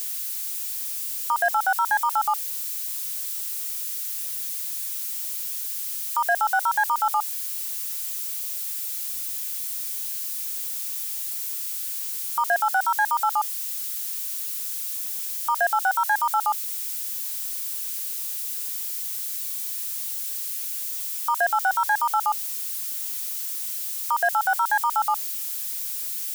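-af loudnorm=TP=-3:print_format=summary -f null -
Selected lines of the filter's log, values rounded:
Input Integrated:    -25.2 LUFS
Input True Peak:     -12.8 dBTP
Input LRA:             2.9 LU
Input Threshold:     -35.2 LUFS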